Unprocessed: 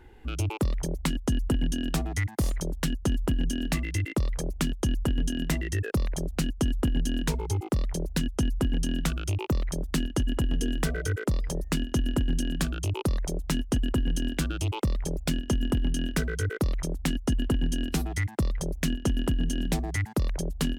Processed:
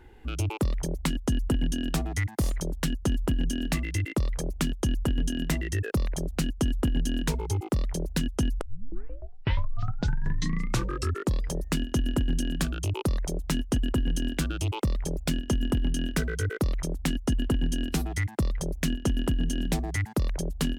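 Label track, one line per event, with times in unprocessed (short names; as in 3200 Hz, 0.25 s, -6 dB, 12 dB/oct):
8.610000	8.610000	tape start 2.85 s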